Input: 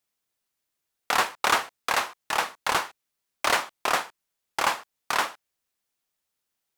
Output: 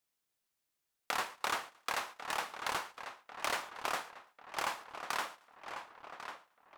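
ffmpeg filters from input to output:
ffmpeg -i in.wav -filter_complex "[0:a]asplit=2[link_01][link_02];[link_02]adelay=1095,lowpass=frequency=3600:poles=1,volume=-16dB,asplit=2[link_03][link_04];[link_04]adelay=1095,lowpass=frequency=3600:poles=1,volume=0.53,asplit=2[link_05][link_06];[link_06]adelay=1095,lowpass=frequency=3600:poles=1,volume=0.53,asplit=2[link_07][link_08];[link_08]adelay=1095,lowpass=frequency=3600:poles=1,volume=0.53,asplit=2[link_09][link_10];[link_10]adelay=1095,lowpass=frequency=3600:poles=1,volume=0.53[link_11];[link_03][link_05][link_07][link_09][link_11]amix=inputs=5:normalize=0[link_12];[link_01][link_12]amix=inputs=2:normalize=0,acompressor=threshold=-35dB:ratio=2,asplit=2[link_13][link_14];[link_14]aecho=0:1:112|224|336:0.0668|0.0281|0.0118[link_15];[link_13][link_15]amix=inputs=2:normalize=0,volume=-3.5dB" out.wav

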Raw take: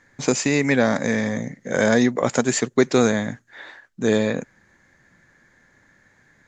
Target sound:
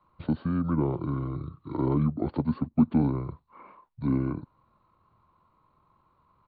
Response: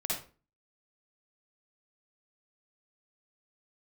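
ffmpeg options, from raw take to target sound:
-filter_complex "[0:a]acrossover=split=320|640|1600[link_01][link_02][link_03][link_04];[link_04]acompressor=threshold=-40dB:ratio=8[link_05];[link_01][link_02][link_03][link_05]amix=inputs=4:normalize=0,adynamicequalizer=threshold=0.0178:dfrequency=390:dqfactor=5.3:tfrequency=390:tqfactor=5.3:attack=5:release=100:ratio=0.375:range=3:mode=boostabove:tftype=bell,asetrate=26990,aresample=44100,atempo=1.63392,lowpass=2300,volume=-8dB"

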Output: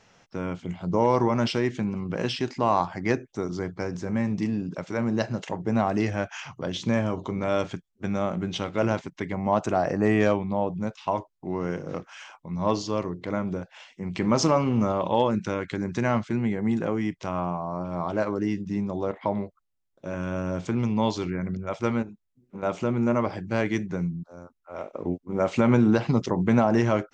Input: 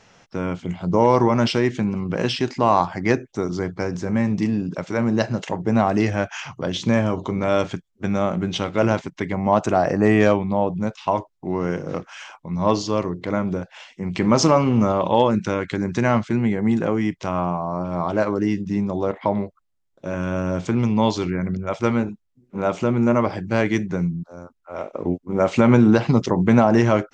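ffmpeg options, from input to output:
ffmpeg -i in.wav -filter_complex "[0:a]asettb=1/sr,asplit=3[link_01][link_02][link_03];[link_01]atrim=end=22.024[link_04];[link_02]atrim=start=22.02:end=22.63,asetpts=PTS-STARTPTS,afade=type=in:duration=0.004:curve=qsin,afade=type=out:start_time=0.606:duration=0.004:curve=qsin,acompressor=threshold=-30dB:ratio=6[link_05];[link_03]atrim=start=22.626[link_06];[link_04][link_05]acrossfade=duration=0.004:curve1=hsin:curve2=qsin[link_07];[link_07][link_06]acrossfade=duration=0.004:curve1=qsin:curve2=hsin,volume=-5.5dB" out.wav

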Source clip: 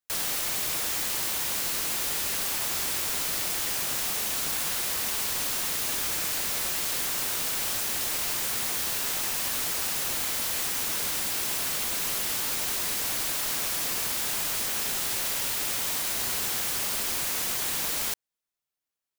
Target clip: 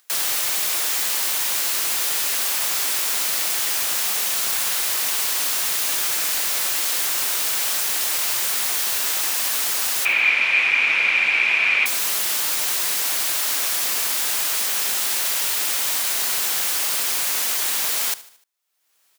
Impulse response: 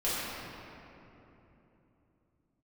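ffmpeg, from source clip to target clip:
-filter_complex "[0:a]highpass=frequency=740:poles=1,acompressor=mode=upward:threshold=-52dB:ratio=2.5,asettb=1/sr,asplit=3[link_01][link_02][link_03];[link_01]atrim=end=10.054[link_04];[link_02]atrim=start=10.05:end=11.86,asetpts=PTS-STARTPTS,afade=type=in:duration=0.004:curve=qsin,afade=type=out:start_time=1.806:duration=0.004:curve=qsin,lowpass=frequency=2400:width_type=q:width=15[link_05];[link_03]atrim=start=11.856[link_06];[link_04][link_05]acrossfade=duration=0.004:curve1=hsin:curve2=qsin[link_07];[link_07][link_06]acrossfade=duration=0.004:curve1=qsin:curve2=hsin,aecho=1:1:75|150|225|300:0.126|0.0604|0.029|0.0139,volume=7dB"

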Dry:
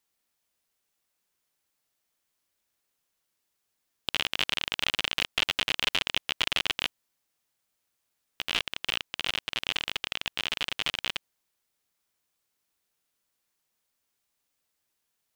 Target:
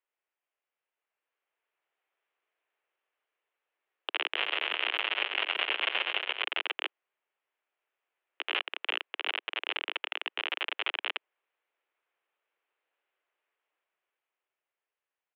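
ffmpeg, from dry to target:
ffmpeg -i in.wav -filter_complex "[0:a]dynaudnorm=framelen=240:gausssize=13:maxgain=8.5dB,highpass=frequency=270:width_type=q:width=0.5412,highpass=frequency=270:width_type=q:width=1.307,lowpass=frequency=2800:width_type=q:width=0.5176,lowpass=frequency=2800:width_type=q:width=0.7071,lowpass=frequency=2800:width_type=q:width=1.932,afreqshift=94,asplit=3[link_01][link_02][link_03];[link_01]afade=type=out:start_time=4.34:duration=0.02[link_04];[link_02]aecho=1:1:130|221|284.7|329.3|360.5:0.631|0.398|0.251|0.158|0.1,afade=type=in:start_time=4.34:duration=0.02,afade=type=out:start_time=6.4:duration=0.02[link_05];[link_03]afade=type=in:start_time=6.4:duration=0.02[link_06];[link_04][link_05][link_06]amix=inputs=3:normalize=0,volume=-5dB" out.wav

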